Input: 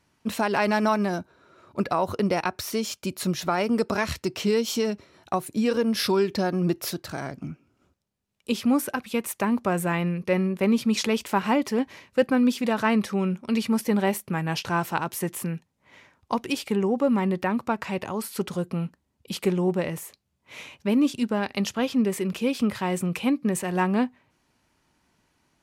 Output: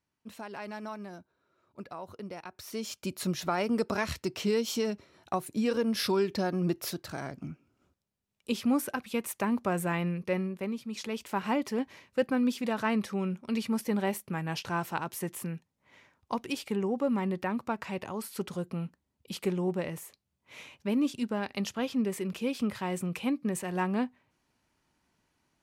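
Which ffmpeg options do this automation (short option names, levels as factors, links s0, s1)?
-af "volume=1.88,afade=t=in:st=2.51:d=0.53:silence=0.237137,afade=t=out:st=10.17:d=0.66:silence=0.251189,afade=t=in:st=10.83:d=0.69:silence=0.298538"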